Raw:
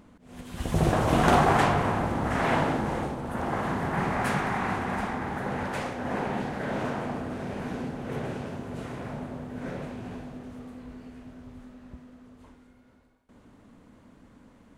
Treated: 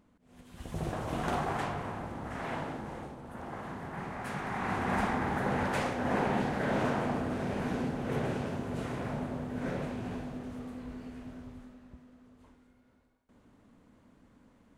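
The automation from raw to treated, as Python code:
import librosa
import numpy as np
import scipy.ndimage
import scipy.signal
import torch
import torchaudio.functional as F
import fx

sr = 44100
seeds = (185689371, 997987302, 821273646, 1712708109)

y = fx.gain(x, sr, db=fx.line((4.24, -12.0), (4.96, 0.5), (11.36, 0.5), (11.9, -7.0)))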